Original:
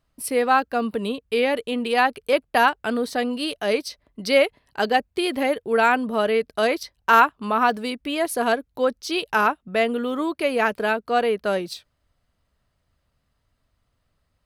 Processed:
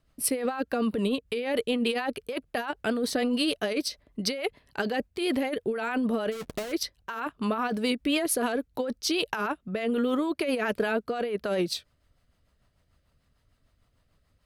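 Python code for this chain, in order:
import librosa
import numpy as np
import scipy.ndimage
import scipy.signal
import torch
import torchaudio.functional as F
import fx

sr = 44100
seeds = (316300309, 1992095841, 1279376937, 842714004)

y = fx.halfwave_hold(x, sr, at=(6.31, 6.71), fade=0.02)
y = fx.rotary(y, sr, hz=6.7)
y = fx.over_compress(y, sr, threshold_db=-28.0, ratio=-1.0)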